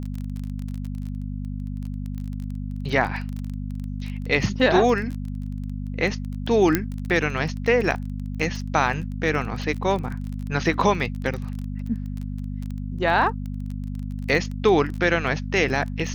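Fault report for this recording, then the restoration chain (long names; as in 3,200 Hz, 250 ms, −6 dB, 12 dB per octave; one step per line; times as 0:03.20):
surface crackle 22 per second −29 dBFS
mains hum 50 Hz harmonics 5 −30 dBFS
0:06.75: click −5 dBFS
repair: click removal
hum removal 50 Hz, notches 5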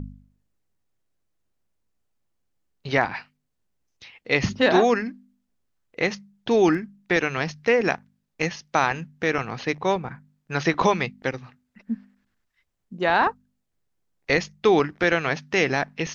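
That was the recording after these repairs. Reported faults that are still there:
0:06.75: click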